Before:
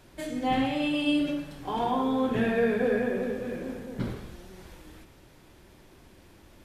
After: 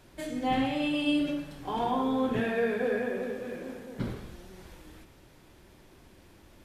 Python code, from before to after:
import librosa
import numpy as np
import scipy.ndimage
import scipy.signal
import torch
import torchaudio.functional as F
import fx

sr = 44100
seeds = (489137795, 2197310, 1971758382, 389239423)

y = fx.low_shelf(x, sr, hz=190.0, db=-10.0, at=(2.4, 4.0))
y = y * 10.0 ** (-1.5 / 20.0)